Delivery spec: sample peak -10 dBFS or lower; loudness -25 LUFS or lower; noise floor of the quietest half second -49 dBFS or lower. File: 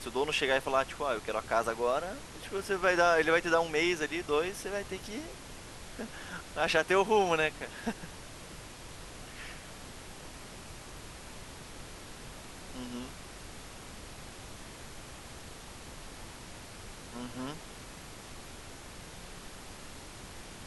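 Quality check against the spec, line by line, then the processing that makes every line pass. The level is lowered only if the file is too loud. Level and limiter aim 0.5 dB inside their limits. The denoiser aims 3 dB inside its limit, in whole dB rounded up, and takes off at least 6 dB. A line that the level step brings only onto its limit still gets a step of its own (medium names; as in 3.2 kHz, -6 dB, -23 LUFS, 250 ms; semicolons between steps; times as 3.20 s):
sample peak -11.5 dBFS: pass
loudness -31.0 LUFS: pass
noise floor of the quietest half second -47 dBFS: fail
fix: noise reduction 6 dB, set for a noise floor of -47 dBFS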